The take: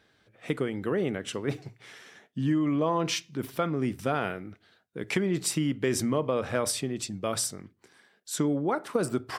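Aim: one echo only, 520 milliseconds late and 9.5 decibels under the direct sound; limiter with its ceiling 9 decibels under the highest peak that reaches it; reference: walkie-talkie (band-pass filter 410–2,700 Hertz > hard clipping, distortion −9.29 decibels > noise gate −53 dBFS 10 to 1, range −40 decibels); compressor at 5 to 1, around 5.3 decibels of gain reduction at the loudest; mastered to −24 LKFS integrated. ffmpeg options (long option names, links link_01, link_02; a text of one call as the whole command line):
ffmpeg -i in.wav -af "acompressor=threshold=-29dB:ratio=5,alimiter=level_in=0.5dB:limit=-24dB:level=0:latency=1,volume=-0.5dB,highpass=410,lowpass=2700,aecho=1:1:520:0.335,asoftclip=type=hard:threshold=-38dB,agate=range=-40dB:threshold=-53dB:ratio=10,volume=19.5dB" out.wav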